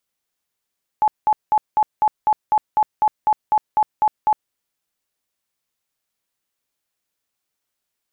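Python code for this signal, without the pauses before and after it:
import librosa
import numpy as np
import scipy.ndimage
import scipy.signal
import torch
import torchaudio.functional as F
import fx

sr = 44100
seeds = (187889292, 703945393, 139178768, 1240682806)

y = fx.tone_burst(sr, hz=856.0, cycles=50, every_s=0.25, bursts=14, level_db=-12.0)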